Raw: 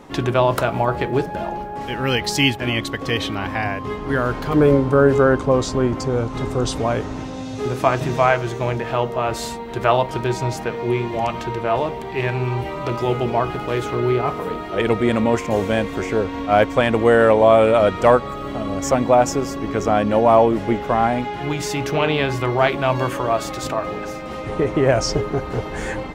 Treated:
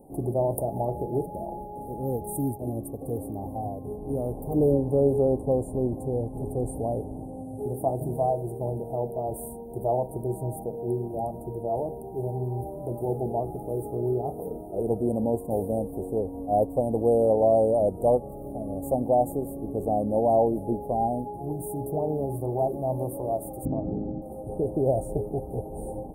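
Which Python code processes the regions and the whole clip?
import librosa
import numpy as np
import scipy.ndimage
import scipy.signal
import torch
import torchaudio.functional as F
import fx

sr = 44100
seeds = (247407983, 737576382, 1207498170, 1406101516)

y = fx.chain(x, sr, fx.lowpass(hz=2300.0, slope=24),
    fx.low_shelf_res(hz=370.0, db=9.5, q=1.5), at=(23.65, 24.22))
y = scipy.signal.sosfilt(scipy.signal.cheby1(5, 1.0, [810.0, 9200.0], 'bandstop', fs=sr, output='sos'), y)
y = fx.high_shelf(y, sr, hz=3500.0, db=9.5)
y = y * librosa.db_to_amplitude(-7.0)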